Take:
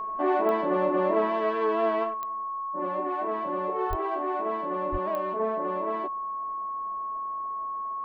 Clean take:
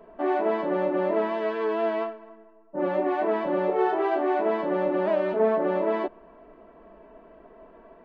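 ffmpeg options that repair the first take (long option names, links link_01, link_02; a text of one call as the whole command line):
ffmpeg -i in.wav -filter_complex "[0:a]adeclick=threshold=4,bandreject=frequency=1100:width=30,asplit=3[link_01][link_02][link_03];[link_01]afade=type=out:start_time=3.89:duration=0.02[link_04];[link_02]highpass=frequency=140:width=0.5412,highpass=frequency=140:width=1.3066,afade=type=in:start_time=3.89:duration=0.02,afade=type=out:start_time=4.01:duration=0.02[link_05];[link_03]afade=type=in:start_time=4.01:duration=0.02[link_06];[link_04][link_05][link_06]amix=inputs=3:normalize=0,asplit=3[link_07][link_08][link_09];[link_07]afade=type=out:start_time=4.91:duration=0.02[link_10];[link_08]highpass=frequency=140:width=0.5412,highpass=frequency=140:width=1.3066,afade=type=in:start_time=4.91:duration=0.02,afade=type=out:start_time=5.03:duration=0.02[link_11];[link_09]afade=type=in:start_time=5.03:duration=0.02[link_12];[link_10][link_11][link_12]amix=inputs=3:normalize=0,asetnsamples=nb_out_samples=441:pad=0,asendcmd='2.14 volume volume 7dB',volume=0dB" out.wav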